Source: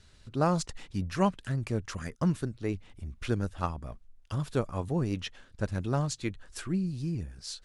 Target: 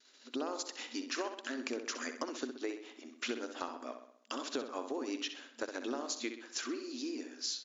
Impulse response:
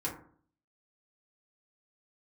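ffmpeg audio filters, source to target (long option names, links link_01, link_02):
-filter_complex "[0:a]agate=range=-33dB:threshold=-51dB:ratio=3:detection=peak,highshelf=frequency=3800:gain=9.5,afftfilt=real='re*between(b*sr/4096,230,7300)':imag='im*between(b*sr/4096,230,7300)':win_size=4096:overlap=0.75,acrossover=split=360[link_01][link_02];[link_02]alimiter=limit=-21.5dB:level=0:latency=1:release=156[link_03];[link_01][link_03]amix=inputs=2:normalize=0,acompressor=threshold=-39dB:ratio=5,asplit=2[link_04][link_05];[link_05]adelay=64,lowpass=frequency=4800:poles=1,volume=-8dB,asplit=2[link_06][link_07];[link_07]adelay=64,lowpass=frequency=4800:poles=1,volume=0.53,asplit=2[link_08][link_09];[link_09]adelay=64,lowpass=frequency=4800:poles=1,volume=0.53,asplit=2[link_10][link_11];[link_11]adelay=64,lowpass=frequency=4800:poles=1,volume=0.53,asplit=2[link_12][link_13];[link_13]adelay=64,lowpass=frequency=4800:poles=1,volume=0.53,asplit=2[link_14][link_15];[link_15]adelay=64,lowpass=frequency=4800:poles=1,volume=0.53[link_16];[link_06][link_08][link_10][link_12][link_14][link_16]amix=inputs=6:normalize=0[link_17];[link_04][link_17]amix=inputs=2:normalize=0,volume=3.5dB"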